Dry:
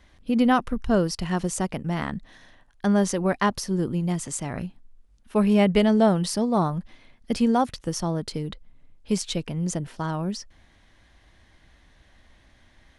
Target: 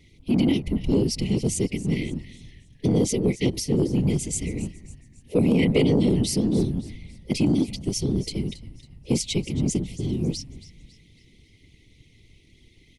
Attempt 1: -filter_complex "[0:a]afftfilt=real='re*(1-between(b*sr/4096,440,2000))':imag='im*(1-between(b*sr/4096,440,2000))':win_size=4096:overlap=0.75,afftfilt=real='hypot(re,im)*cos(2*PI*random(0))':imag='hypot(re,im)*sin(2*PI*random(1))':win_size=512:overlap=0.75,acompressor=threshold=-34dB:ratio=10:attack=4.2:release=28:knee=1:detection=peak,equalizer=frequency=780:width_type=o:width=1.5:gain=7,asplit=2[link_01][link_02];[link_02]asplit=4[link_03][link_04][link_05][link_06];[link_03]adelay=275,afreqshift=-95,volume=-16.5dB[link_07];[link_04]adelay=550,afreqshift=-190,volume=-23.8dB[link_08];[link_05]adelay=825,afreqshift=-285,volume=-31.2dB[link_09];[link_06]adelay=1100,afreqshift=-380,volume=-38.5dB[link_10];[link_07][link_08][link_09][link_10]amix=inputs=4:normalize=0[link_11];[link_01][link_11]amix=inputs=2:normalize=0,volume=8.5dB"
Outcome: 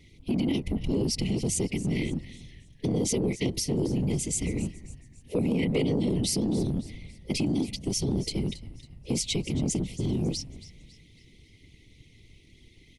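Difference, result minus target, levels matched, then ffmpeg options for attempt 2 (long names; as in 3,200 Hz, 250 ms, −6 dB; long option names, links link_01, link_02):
downward compressor: peak gain reduction +7 dB
-filter_complex "[0:a]afftfilt=real='re*(1-between(b*sr/4096,440,2000))':imag='im*(1-between(b*sr/4096,440,2000))':win_size=4096:overlap=0.75,afftfilt=real='hypot(re,im)*cos(2*PI*random(0))':imag='hypot(re,im)*sin(2*PI*random(1))':win_size=512:overlap=0.75,acompressor=threshold=-26.5dB:ratio=10:attack=4.2:release=28:knee=1:detection=peak,equalizer=frequency=780:width_type=o:width=1.5:gain=7,asplit=2[link_01][link_02];[link_02]asplit=4[link_03][link_04][link_05][link_06];[link_03]adelay=275,afreqshift=-95,volume=-16.5dB[link_07];[link_04]adelay=550,afreqshift=-190,volume=-23.8dB[link_08];[link_05]adelay=825,afreqshift=-285,volume=-31.2dB[link_09];[link_06]adelay=1100,afreqshift=-380,volume=-38.5dB[link_10];[link_07][link_08][link_09][link_10]amix=inputs=4:normalize=0[link_11];[link_01][link_11]amix=inputs=2:normalize=0,volume=8.5dB"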